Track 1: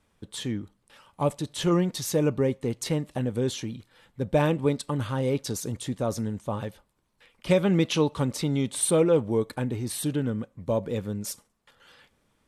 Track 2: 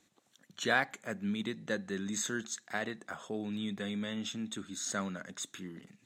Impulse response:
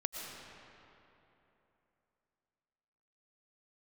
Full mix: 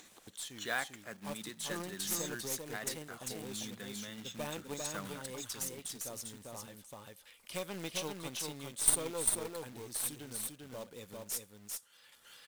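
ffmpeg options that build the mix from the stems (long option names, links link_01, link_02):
-filter_complex "[0:a]crystalizer=i=4:c=0,aeval=exprs='1.06*(cos(1*acos(clip(val(0)/1.06,-1,1)))-cos(1*PI/2))+0.133*(cos(3*acos(clip(val(0)/1.06,-1,1)))-cos(3*PI/2))+0.168*(cos(4*acos(clip(val(0)/1.06,-1,1)))-cos(4*PI/2))':channel_layout=same,adelay=50,volume=-13.5dB,asplit=2[link_01][link_02];[link_02]volume=-3.5dB[link_03];[1:a]asubboost=boost=3:cutoff=170,volume=-6dB[link_04];[link_03]aecho=0:1:397:1[link_05];[link_01][link_04][link_05]amix=inputs=3:normalize=0,acrusher=bits=3:mode=log:mix=0:aa=0.000001,lowshelf=frequency=310:gain=-9,acompressor=mode=upward:threshold=-43dB:ratio=2.5"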